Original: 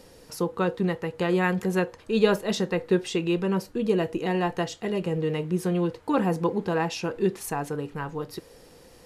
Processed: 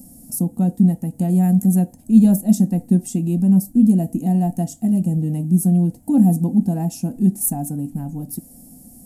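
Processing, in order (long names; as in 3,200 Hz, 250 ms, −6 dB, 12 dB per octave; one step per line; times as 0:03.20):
drawn EQ curve 120 Hz 0 dB, 250 Hz +13 dB, 430 Hz −23 dB, 720 Hz −2 dB, 1,100 Hz −30 dB, 1,600 Hz −25 dB, 3,900 Hz −21 dB, 8,600 Hz +9 dB, 13,000 Hz +14 dB
level +5.5 dB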